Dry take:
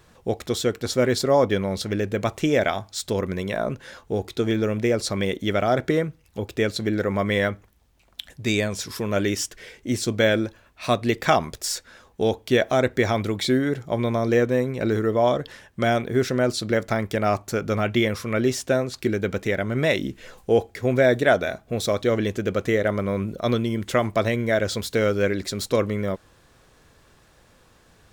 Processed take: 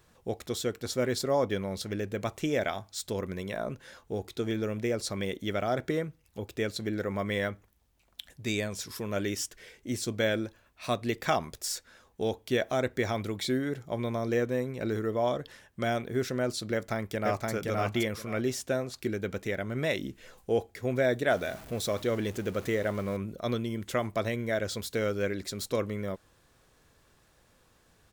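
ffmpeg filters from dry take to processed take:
-filter_complex "[0:a]asplit=2[a][b];[b]afade=t=in:st=16.73:d=0.01,afade=t=out:st=17.51:d=0.01,aecho=0:1:520|1040|1560:0.841395|0.168279|0.0336558[c];[a][c]amix=inputs=2:normalize=0,asettb=1/sr,asplit=3[d][e][f];[d]atrim=end=21.304[g];[e]atrim=start=21.3:end=23.17,asetpts=PTS-STARTPTS,afade=t=in:d=0.004:c=qsin,afade=t=out:st=1.866:d=0.004:c=qsin,aeval=exprs='val(0)+0.5*0.0188*sgn(val(0))':c=same[h];[f]atrim=start=23.166[i];[g][h]acrossfade=d=0.004:c1=hsin:c2=qsin[j];[j][i]acrossfade=d=0.004:c1=qsin:c2=hsin,highshelf=f=8.6k:g=6,volume=-8.5dB"

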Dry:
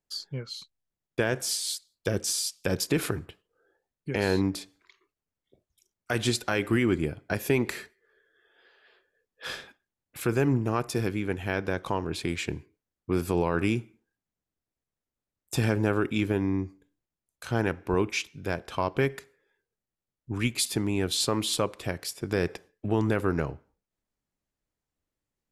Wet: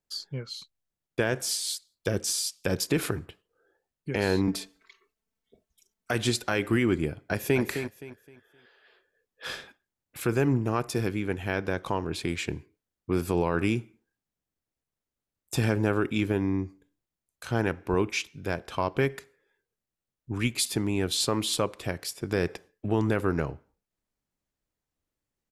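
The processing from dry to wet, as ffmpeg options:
-filter_complex "[0:a]asettb=1/sr,asplit=3[a][b][c];[a]atrim=end=4.474[d];[b]atrim=start=4.47:end=6.11,asetpts=PTS-STARTPTS,afade=t=in:d=0.004:c=qsin,afade=t=out:st=1.636:d=0.004:c=qsin,aecho=1:1:4.5:0.99,atrim=end_sample=72324[e];[c]atrim=start=6.106[f];[d][e]acrossfade=d=0.004:c1=hsin:c2=qsin[g];[g][f]acrossfade=d=0.004:c1=qsin:c2=hsin,asplit=2[h][i];[i]afade=t=in:st=7.17:d=0.01,afade=t=out:st=7.61:d=0.01,aecho=0:1:260|520|780|1040:0.375837|0.112751|0.0338254|0.0101476[j];[h][j]amix=inputs=2:normalize=0"

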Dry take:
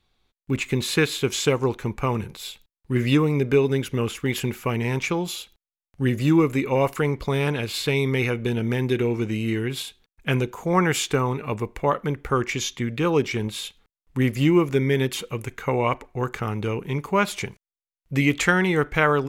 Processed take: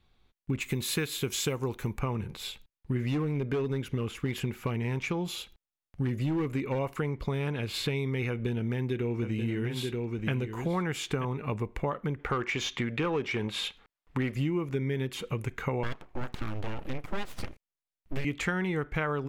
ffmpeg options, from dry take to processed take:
-filter_complex "[0:a]asettb=1/sr,asplit=3[a][b][c];[a]atrim=end=0.604[d];[b]atrim=start=0.6:end=1.99,asetpts=PTS-STARTPTS,afade=t=in:d=0.004:c=qsin,afade=t=out:st=1.386:d=0.004:c=qsin,aemphasis=mode=production:type=50fm[e];[c]atrim=start=1.986[f];[d][e]acrossfade=d=0.004:c1=hsin:c2=qsin[g];[g][f]acrossfade=d=0.004:c1=qsin:c2=hsin,asettb=1/sr,asplit=3[h][i][j];[h]atrim=end=2.994[k];[i]atrim=start=2.99:end=6.79,asetpts=PTS-STARTPTS,afade=t=in:d=0.004:c=qsin,afade=t=out:st=3.796:d=0.004:c=qsin,asoftclip=type=hard:threshold=-16dB[l];[j]atrim=start=6.786[m];[k][l]acrossfade=d=0.004:c1=hsin:c2=qsin[n];[n][m]acrossfade=d=0.004:c1=qsin:c2=hsin,asettb=1/sr,asplit=3[o][p][q];[o]atrim=end=8.294[r];[p]atrim=start=8.29:end=11.25,asetpts=PTS-STARTPTS,afade=t=in:d=0.004:c=qsin,afade=t=out:st=2.956:d=0.004:c=qsin,aecho=1:1:932:0.355,atrim=end_sample=130536[s];[q]atrim=start=11.246[t];[r][s]acrossfade=d=0.004:c1=hsin:c2=qsin[u];[u][t]acrossfade=d=0.004:c1=qsin:c2=hsin,asettb=1/sr,asplit=3[v][w][x];[v]atrim=end=12.194[y];[w]atrim=start=12.19:end=14.35,asetpts=PTS-STARTPTS,afade=t=in:d=0.004:c=qsin,afade=t=out:st=2.156:d=0.004:c=qsin,asplit=2[z][aa];[aa]highpass=f=720:p=1,volume=14dB,asoftclip=type=tanh:threshold=-9dB[ab];[z][ab]amix=inputs=2:normalize=0,lowpass=f=2.9k:p=1,volume=-6dB[ac];[x]atrim=start=14.346[ad];[y][ac]acrossfade=d=0.004:c1=hsin:c2=qsin[ae];[ae][ad]acrossfade=d=0.004:c1=qsin:c2=hsin,asettb=1/sr,asplit=3[af][ag][ah];[af]atrim=end=15.834[ai];[ag]atrim=start=15.83:end=18.25,asetpts=PTS-STARTPTS,afade=t=in:d=0.004:c=qsin,afade=t=out:st=2.416:d=0.004:c=qsin,aeval=exprs='abs(val(0))':c=same[aj];[ah]atrim=start=18.246[ak];[ai][aj]acrossfade=d=0.004:c1=hsin:c2=qsin[al];[al][ak]acrossfade=d=0.004:c1=qsin:c2=hsin,bass=f=250:g=4,treble=f=4k:g=-6,acompressor=threshold=-29dB:ratio=4"

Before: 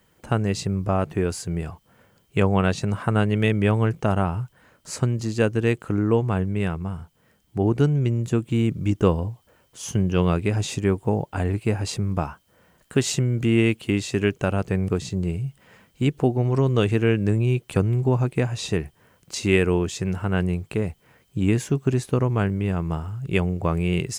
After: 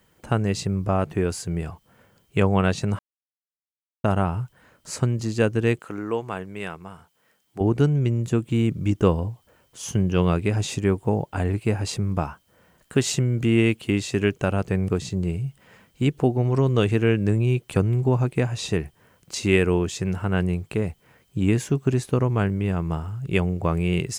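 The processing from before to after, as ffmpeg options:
-filter_complex "[0:a]asettb=1/sr,asplit=3[a][b][c];[a]atrim=end=5.794[d];[b]atrim=start=5.79:end=7.61,asetpts=PTS-STARTPTS,afade=t=in:d=0.004:c=qsin,afade=t=out:st=1.816:d=0.004:c=qsin,highpass=f=670:p=1[e];[c]atrim=start=7.606[f];[d][e]acrossfade=d=0.004:c1=hsin:c2=qsin[g];[g][f]acrossfade=d=0.004:c1=qsin:c2=hsin,asplit=3[h][i][j];[h]atrim=end=2.99,asetpts=PTS-STARTPTS,afade=t=out:st=2.986:d=0.004:c=hsin[k];[i]atrim=start=2.99:end=4.04,asetpts=PTS-STARTPTS,volume=0[l];[j]atrim=start=4.04,asetpts=PTS-STARTPTS,afade=t=in:d=0.004:c=hsin[m];[k][l][m]concat=n=3:v=0:a=1"

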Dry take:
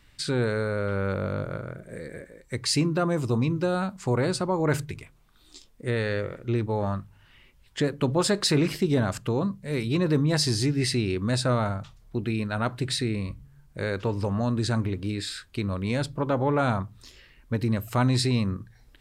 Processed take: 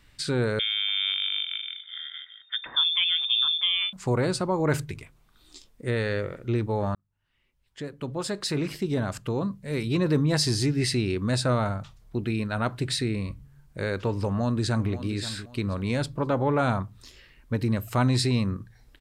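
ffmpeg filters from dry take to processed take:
-filter_complex "[0:a]asettb=1/sr,asplit=3[a][b][c];[a]atrim=end=0.594[d];[b]atrim=start=0.59:end=3.93,asetpts=PTS-STARTPTS,afade=t=in:d=0.004:c=qsin,afade=t=out:st=3.336:d=0.004:c=qsin,lowpass=f=3.1k:t=q:w=0.5098,lowpass=f=3.1k:t=q:w=0.6013,lowpass=f=3.1k:t=q:w=0.9,lowpass=f=3.1k:t=q:w=2.563,afreqshift=-3700[e];[c]atrim=start=3.926[f];[d][e]acrossfade=d=0.004:c1=hsin:c2=qsin[g];[g][f]acrossfade=d=0.004:c1=qsin:c2=hsin,asplit=2[h][i];[i]afade=t=in:st=14.26:d=0.01,afade=t=out:st=14.92:d=0.01,aecho=0:1:530|1060|1590:0.223872|0.0671616|0.0201485[j];[h][j]amix=inputs=2:normalize=0,asplit=2[k][l];[k]atrim=end=6.95,asetpts=PTS-STARTPTS,afade=t=out:st=6.946:d=0.004:c=hsin[m];[l]atrim=start=6.95,asetpts=PTS-STARTPTS,afade=t=in:d=3.05[n];[m][n]concat=n=2:v=0:a=1"

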